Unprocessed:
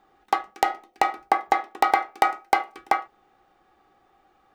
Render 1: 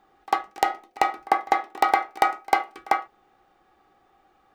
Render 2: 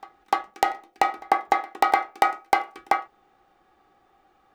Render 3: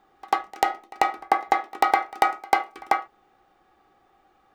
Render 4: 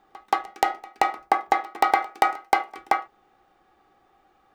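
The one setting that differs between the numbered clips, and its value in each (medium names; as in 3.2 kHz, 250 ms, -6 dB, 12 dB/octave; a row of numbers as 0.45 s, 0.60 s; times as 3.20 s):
pre-echo, time: 48 ms, 298 ms, 93 ms, 177 ms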